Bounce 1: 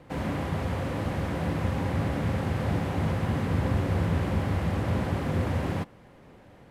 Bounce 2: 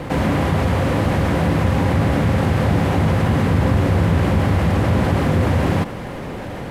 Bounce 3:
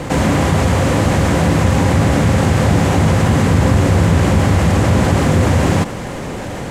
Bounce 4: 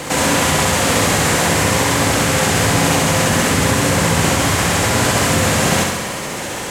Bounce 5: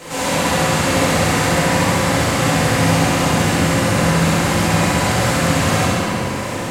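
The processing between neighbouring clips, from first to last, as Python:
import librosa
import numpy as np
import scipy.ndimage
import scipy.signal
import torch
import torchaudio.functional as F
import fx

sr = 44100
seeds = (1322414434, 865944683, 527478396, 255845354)

y1 = fx.env_flatten(x, sr, amount_pct=50)
y1 = F.gain(torch.from_numpy(y1), 8.5).numpy()
y2 = fx.peak_eq(y1, sr, hz=7200.0, db=11.0, octaves=0.93)
y2 = F.gain(torch.from_numpy(y2), 4.0).numpy()
y3 = fx.tilt_eq(y2, sr, slope=3.0)
y3 = fx.room_flutter(y3, sr, wall_m=11.5, rt60_s=1.1)
y4 = fx.room_shoebox(y3, sr, seeds[0], volume_m3=120.0, walls='hard', distance_m=1.5)
y4 = F.gain(torch.from_numpy(y4), -13.0).numpy()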